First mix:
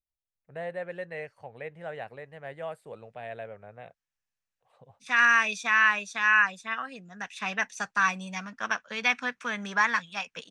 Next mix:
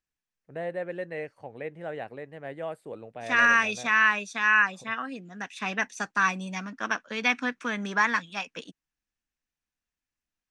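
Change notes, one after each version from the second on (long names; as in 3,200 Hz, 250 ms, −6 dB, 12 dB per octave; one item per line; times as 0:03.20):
second voice: entry −1.80 s
master: add parametric band 300 Hz +11.5 dB 0.86 octaves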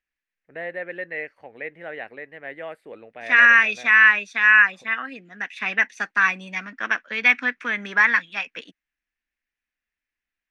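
master: add octave-band graphic EQ 125/1,000/2,000/8,000 Hz −11/−3/+12/−9 dB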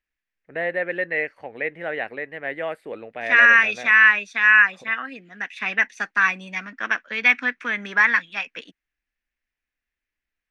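first voice +6.5 dB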